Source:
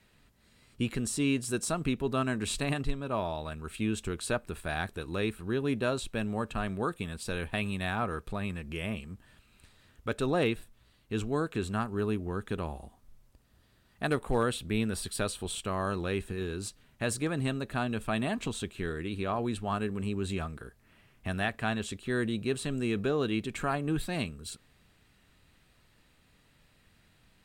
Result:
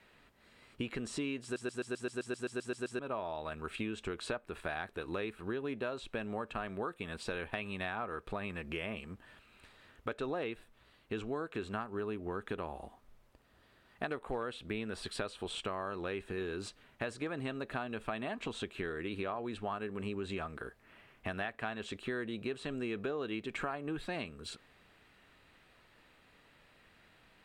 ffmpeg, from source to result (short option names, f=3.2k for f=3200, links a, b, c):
-filter_complex "[0:a]asplit=13[a][b][c][d][e][f][g][h][i][j][k][l][m];[a]atrim=end=1.562[n];[b]atrim=start=1.428:end=1.562[o];[c]atrim=start=1.428:end=1.562[p];[d]atrim=start=1.428:end=1.562[q];[e]atrim=start=1.428:end=1.562[r];[f]atrim=start=1.428:end=1.562[s];[g]atrim=start=1.428:end=1.562[t];[h]atrim=start=1.428:end=1.562[u];[i]atrim=start=1.428:end=1.562[v];[j]atrim=start=1.428:end=1.562[w];[k]atrim=start=1.428:end=1.562[x];[l]atrim=start=1.428:end=1.562[y];[m]atrim=start=2.988[z];[n][o]acrossfade=d=0.004:c1=hsin:c2=hsin[aa];[aa][p]acrossfade=d=0.004:c1=hsin:c2=hsin[ab];[ab][q]acrossfade=d=0.004:c1=hsin:c2=hsin[ac];[ac][r]acrossfade=d=0.004:c1=hsin:c2=hsin[ad];[ad][s]acrossfade=d=0.004:c1=hsin:c2=hsin[ae];[ae][t]acrossfade=d=0.004:c1=hsin:c2=hsin[af];[af][u]acrossfade=d=0.004:c1=hsin:c2=hsin[ag];[ag][v]acrossfade=d=0.004:c1=hsin:c2=hsin[ah];[ah][w]acrossfade=d=0.004:c1=hsin:c2=hsin[ai];[ai][x]acrossfade=d=0.004:c1=hsin:c2=hsin[aj];[aj][y]acrossfade=d=0.004:c1=hsin:c2=hsin[ak];[ak][z]acrossfade=d=0.004:c1=hsin:c2=hsin,acrossover=split=8400[al][am];[am]acompressor=threshold=-60dB:ratio=4:attack=1:release=60[an];[al][an]amix=inputs=2:normalize=0,bass=f=250:g=-11,treble=f=4k:g=-11,acompressor=threshold=-40dB:ratio=6,volume=5dB"